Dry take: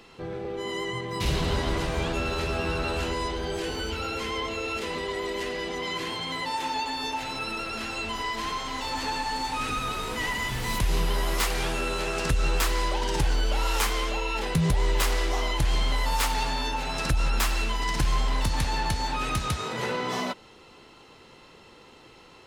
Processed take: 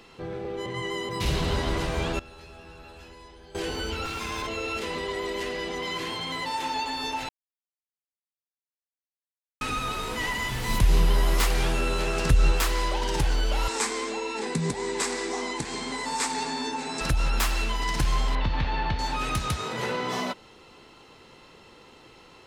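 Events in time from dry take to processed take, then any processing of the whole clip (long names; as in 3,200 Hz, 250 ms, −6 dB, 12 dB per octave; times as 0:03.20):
0:00.66–0:01.09: reverse
0:02.19–0:03.55: tuned comb filter 840 Hz, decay 0.32 s, mix 90%
0:04.05–0:04.47: lower of the sound and its delayed copy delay 0.81 ms
0:05.79–0:06.55: gain into a clipping stage and back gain 25 dB
0:07.29–0:09.61: silence
0:10.69–0:12.52: low-shelf EQ 240 Hz +6 dB
0:13.68–0:17.01: loudspeaker in its box 210–8,800 Hz, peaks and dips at 240 Hz +9 dB, 420 Hz +5 dB, 600 Hz −9 dB, 1,300 Hz −5 dB, 3,000 Hz −9 dB, 8,000 Hz +9 dB
0:18.35–0:18.99: low-pass filter 3,700 Hz 24 dB per octave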